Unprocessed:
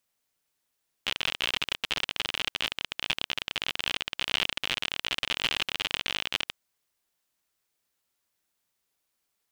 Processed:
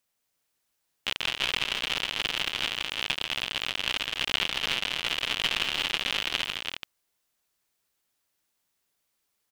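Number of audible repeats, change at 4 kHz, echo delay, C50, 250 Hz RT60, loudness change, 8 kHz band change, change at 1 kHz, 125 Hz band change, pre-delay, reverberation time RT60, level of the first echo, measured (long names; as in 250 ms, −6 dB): 3, +2.0 dB, 161 ms, no reverb audible, no reverb audible, +1.5 dB, +2.0 dB, +2.0 dB, +2.0 dB, no reverb audible, no reverb audible, −13.0 dB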